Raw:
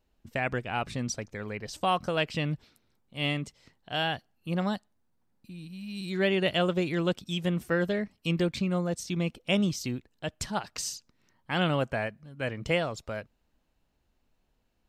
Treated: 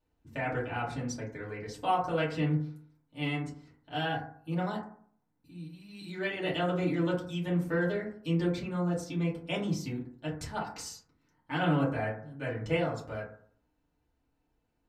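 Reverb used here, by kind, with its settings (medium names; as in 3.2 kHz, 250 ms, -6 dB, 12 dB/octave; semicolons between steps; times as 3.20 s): FDN reverb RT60 0.55 s, low-frequency decay 1.1×, high-frequency decay 0.3×, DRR -8 dB; trim -11.5 dB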